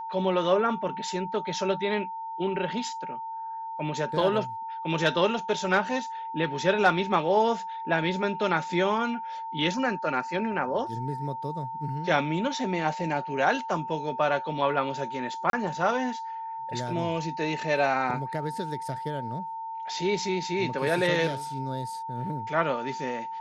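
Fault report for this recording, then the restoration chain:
whine 900 Hz -33 dBFS
15.50–15.53 s: dropout 32 ms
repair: band-stop 900 Hz, Q 30; interpolate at 15.50 s, 32 ms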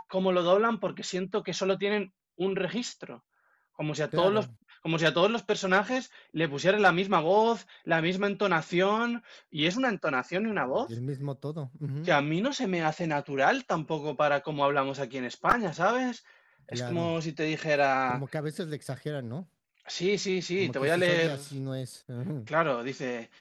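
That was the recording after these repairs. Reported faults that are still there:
nothing left

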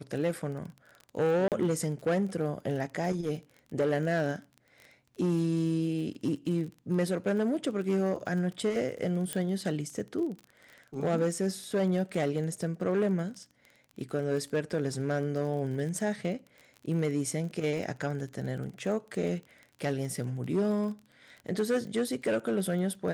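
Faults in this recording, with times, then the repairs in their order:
crackle 31 per s -38 dBFS
1.48–1.52 s: dropout 38 ms
9.33 s: pop -16 dBFS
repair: de-click; interpolate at 1.48 s, 38 ms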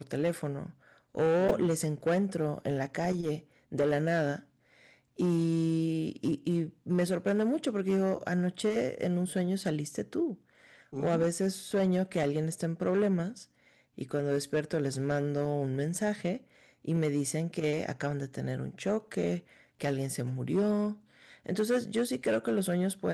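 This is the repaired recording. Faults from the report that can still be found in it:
nothing left

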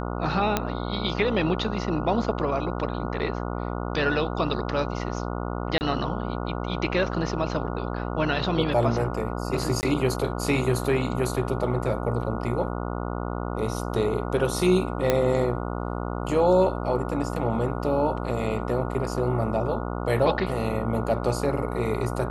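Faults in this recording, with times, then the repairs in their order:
buzz 60 Hz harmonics 24 -30 dBFS
0.57 s: pop -7 dBFS
5.78–5.81 s: dropout 29 ms
9.81–9.83 s: dropout 19 ms
15.10 s: pop -7 dBFS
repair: de-click; de-hum 60 Hz, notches 24; interpolate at 5.78 s, 29 ms; interpolate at 9.81 s, 19 ms

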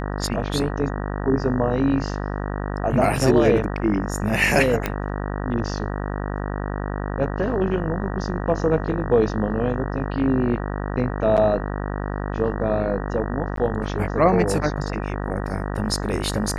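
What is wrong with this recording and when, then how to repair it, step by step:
buzz 50 Hz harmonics 38 -27 dBFS
4.86 s: pop -8 dBFS
13.56–13.57 s: dropout 13 ms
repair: de-click; de-hum 50 Hz, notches 38; interpolate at 13.56 s, 13 ms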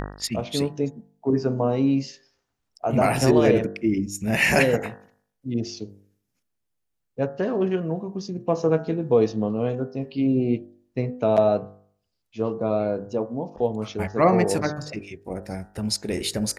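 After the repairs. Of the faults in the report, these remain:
nothing left

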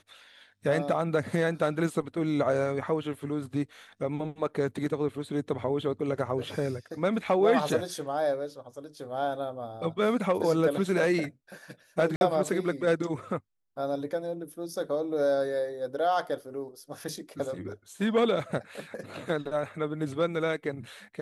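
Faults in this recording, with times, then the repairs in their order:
12.16–12.21 s: dropout 51 ms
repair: interpolate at 12.16 s, 51 ms

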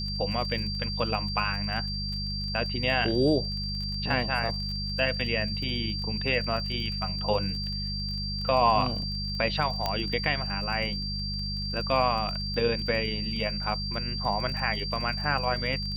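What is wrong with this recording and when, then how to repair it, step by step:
crackle 29 per s -35 dBFS
hum 50 Hz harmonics 4 -34 dBFS
whine 4.7 kHz -33 dBFS
9.86 s: pop -13 dBFS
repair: de-click; de-hum 50 Hz, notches 4; band-stop 4.7 kHz, Q 30

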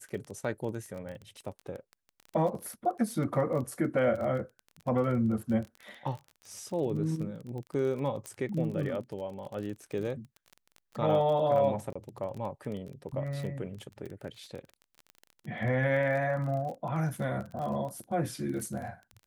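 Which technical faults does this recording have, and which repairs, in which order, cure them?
crackle 28 per s -37 dBFS
8.26 s: pop -22 dBFS
11.93–11.96 s: dropout 25 ms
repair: de-click; interpolate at 11.93 s, 25 ms

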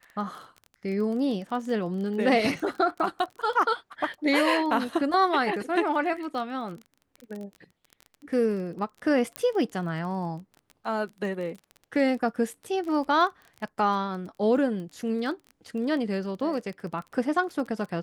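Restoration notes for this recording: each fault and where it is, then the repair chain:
crackle 22 per s -34 dBFS
9.36 s: pop -14 dBFS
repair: de-click

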